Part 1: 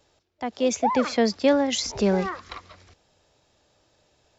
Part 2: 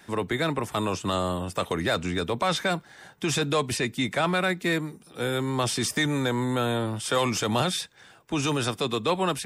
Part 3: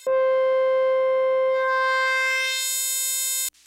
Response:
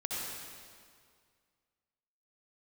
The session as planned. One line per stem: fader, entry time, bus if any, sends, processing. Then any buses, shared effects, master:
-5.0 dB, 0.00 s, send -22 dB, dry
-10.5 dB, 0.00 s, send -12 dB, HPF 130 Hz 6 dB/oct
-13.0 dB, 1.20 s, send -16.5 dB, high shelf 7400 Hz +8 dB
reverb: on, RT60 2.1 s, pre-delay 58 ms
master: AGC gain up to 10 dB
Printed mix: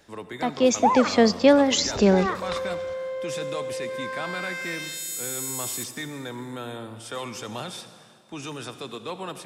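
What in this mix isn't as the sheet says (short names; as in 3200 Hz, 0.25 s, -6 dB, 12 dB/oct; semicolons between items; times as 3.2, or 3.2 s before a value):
stem 1 -5.0 dB -> +3.0 dB; stem 3: entry 1.20 s -> 2.35 s; master: missing AGC gain up to 10 dB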